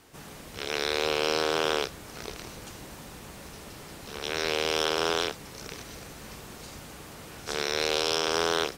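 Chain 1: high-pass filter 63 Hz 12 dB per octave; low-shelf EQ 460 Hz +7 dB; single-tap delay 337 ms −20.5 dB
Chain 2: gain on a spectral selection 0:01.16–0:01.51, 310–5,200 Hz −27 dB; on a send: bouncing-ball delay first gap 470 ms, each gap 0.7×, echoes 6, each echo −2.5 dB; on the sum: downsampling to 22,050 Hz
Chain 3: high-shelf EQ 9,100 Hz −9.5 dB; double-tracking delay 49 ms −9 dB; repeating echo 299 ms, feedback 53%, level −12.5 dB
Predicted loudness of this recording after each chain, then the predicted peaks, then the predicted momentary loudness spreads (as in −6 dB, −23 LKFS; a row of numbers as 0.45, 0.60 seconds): −26.5, −27.5, −28.0 LKFS; −10.0, −8.0, −10.5 dBFS; 17, 16, 18 LU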